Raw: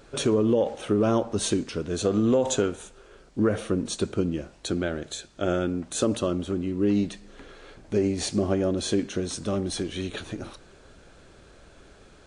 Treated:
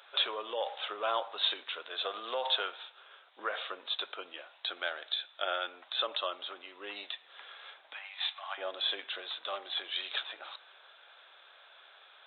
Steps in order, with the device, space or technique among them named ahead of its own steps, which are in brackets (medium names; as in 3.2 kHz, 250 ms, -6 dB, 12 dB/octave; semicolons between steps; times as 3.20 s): 7.93–8.58 s: steep high-pass 800 Hz 36 dB/octave; musical greeting card (resampled via 8 kHz; high-pass 750 Hz 24 dB/octave; peaking EQ 3.7 kHz +10.5 dB 0.39 oct)